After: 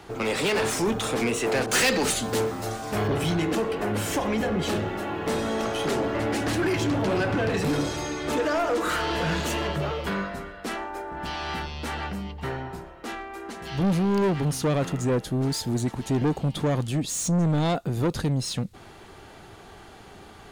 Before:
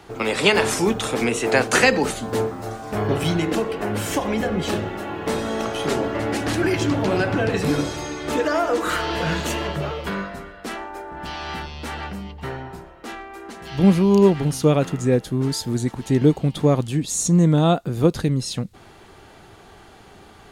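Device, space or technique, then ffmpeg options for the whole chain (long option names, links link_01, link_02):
saturation between pre-emphasis and de-emphasis: -filter_complex "[0:a]highshelf=frequency=3700:gain=8,asoftclip=type=tanh:threshold=-19.5dB,highshelf=frequency=3700:gain=-8,asettb=1/sr,asplit=3[link_01][link_02][link_03];[link_01]atrim=end=1.664[link_04];[link_02]atrim=start=1.66:end=3.08,asetpts=PTS-STARTPTS,afade=type=in:duration=0.004:curve=qsin,afade=type=out:start_time=1.416:duration=0.004:curve=qsin,adynamicequalizer=threshold=0.00891:dfrequency=2100:dqfactor=0.7:tfrequency=2100:tqfactor=0.7:attack=5:release=100:ratio=0.375:range=4:mode=boostabove:tftype=highshelf[link_05];[link_03]atrim=start=3.076[link_06];[link_04][link_05]acrossfade=duration=0.004:curve1=hsin:curve2=qsin[link_07];[link_07][link_06]acrossfade=duration=0.004:curve1=qsin:curve2=hsin"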